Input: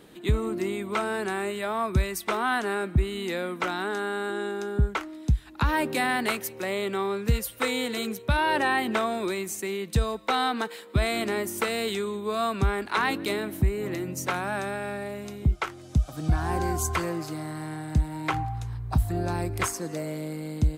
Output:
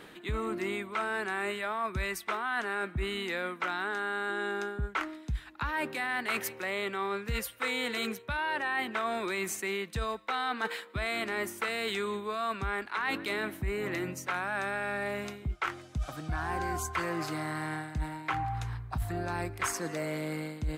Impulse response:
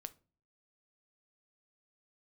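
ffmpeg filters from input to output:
-af "equalizer=f=1.7k:w=0.56:g=10.5,areverse,acompressor=threshold=-29dB:ratio=5,areverse,volume=-1.5dB"

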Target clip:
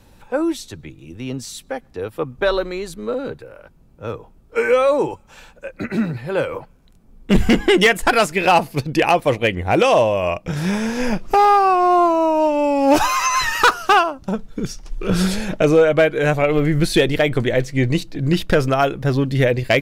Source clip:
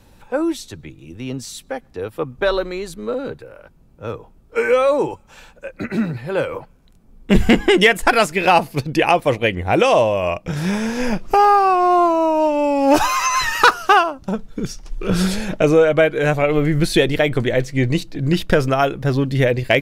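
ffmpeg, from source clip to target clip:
-af "volume=6.5dB,asoftclip=hard,volume=-6.5dB"

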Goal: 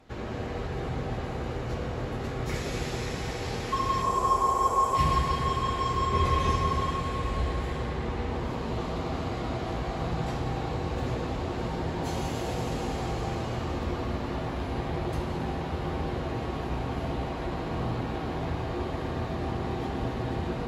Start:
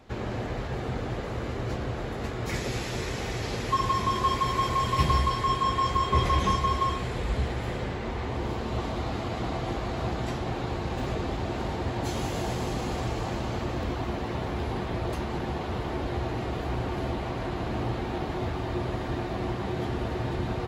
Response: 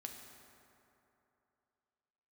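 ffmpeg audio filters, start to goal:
-filter_complex "[0:a]asettb=1/sr,asplit=3[a][b][c];[a]atrim=end=4.024[d];[b]atrim=start=4.02:end=4.95,asetpts=PTS-STARTPTS,afade=t=in:d=0.004:c=qsin,afade=t=out:st=0.926:d=0.004:c=qsin,equalizer=f=125:t=o:w=1:g=-11,equalizer=f=250:t=o:w=1:g=-6,equalizer=f=500:t=o:w=1:g=5,equalizer=f=1k:t=o:w=1:g=8,equalizer=f=2k:t=o:w=1:g=-10,equalizer=f=4k:t=o:w=1:g=-11,equalizer=f=8k:t=o:w=1:g=8[e];[c]atrim=start=4.946[f];[d][e]acrossfade=d=0.004:c1=hsin:c2=qsin[g];[g][f]acrossfade=d=0.004:c1=qsin:c2=hsin[h];[1:a]atrim=start_sample=2205,asetrate=28665,aresample=44100[i];[h][i]afir=irnorm=-1:irlink=0"

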